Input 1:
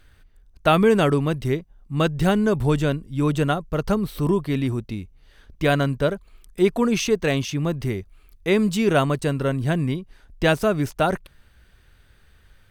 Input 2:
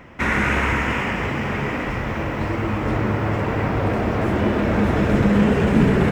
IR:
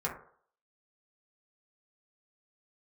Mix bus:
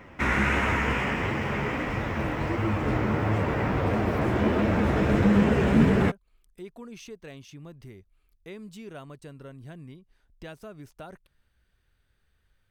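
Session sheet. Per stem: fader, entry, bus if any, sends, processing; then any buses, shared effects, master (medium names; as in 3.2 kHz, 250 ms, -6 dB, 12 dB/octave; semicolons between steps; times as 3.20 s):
-15.5 dB, 0.00 s, no send, compression 2:1, threshold -29 dBFS, peak gain reduction 9.5 dB
-0.5 dB, 0.00 s, no send, flange 1.5 Hz, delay 8.8 ms, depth 8.1 ms, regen +45%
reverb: none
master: none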